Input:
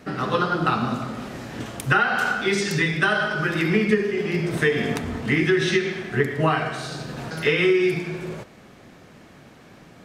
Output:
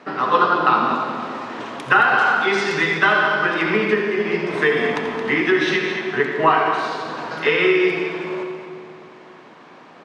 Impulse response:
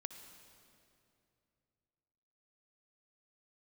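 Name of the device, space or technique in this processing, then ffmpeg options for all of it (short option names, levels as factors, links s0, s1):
station announcement: -filter_complex "[0:a]highpass=300,lowpass=4200,equalizer=f=1000:t=o:w=0.49:g=8.5,aecho=1:1:84.55|221.6:0.282|0.316[s0];[1:a]atrim=start_sample=2205[s1];[s0][s1]afir=irnorm=-1:irlink=0,volume=2.24"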